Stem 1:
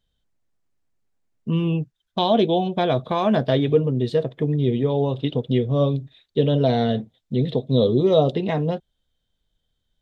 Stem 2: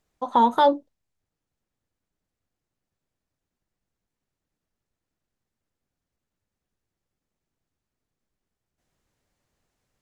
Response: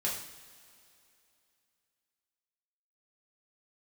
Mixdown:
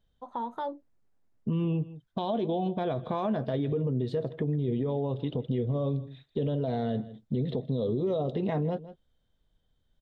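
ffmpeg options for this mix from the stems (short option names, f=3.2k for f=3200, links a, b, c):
-filter_complex "[0:a]equalizer=f=2.6k:t=o:w=0.77:g=-2.5,alimiter=limit=-17dB:level=0:latency=1:release=64,volume=2.5dB,asplit=2[a][b];[b]volume=-19.5dB[c];[1:a]volume=-13.5dB[d];[c]aecho=0:1:159:1[e];[a][d][e]amix=inputs=3:normalize=0,highshelf=f=3.2k:g=-11,acompressor=threshold=-31dB:ratio=2"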